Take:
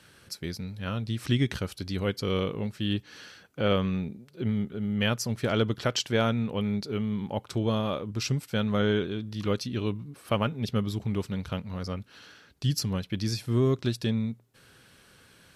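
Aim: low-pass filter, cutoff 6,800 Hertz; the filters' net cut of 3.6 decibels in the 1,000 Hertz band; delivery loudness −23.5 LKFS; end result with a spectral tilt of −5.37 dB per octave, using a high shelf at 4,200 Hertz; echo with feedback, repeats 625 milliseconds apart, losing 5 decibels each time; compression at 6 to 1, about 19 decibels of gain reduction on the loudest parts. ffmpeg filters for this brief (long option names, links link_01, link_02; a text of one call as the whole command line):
ffmpeg -i in.wav -af "lowpass=6800,equalizer=frequency=1000:width_type=o:gain=-5.5,highshelf=frequency=4200:gain=5,acompressor=threshold=-42dB:ratio=6,aecho=1:1:625|1250|1875|2500|3125|3750|4375:0.562|0.315|0.176|0.0988|0.0553|0.031|0.0173,volume=20.5dB" out.wav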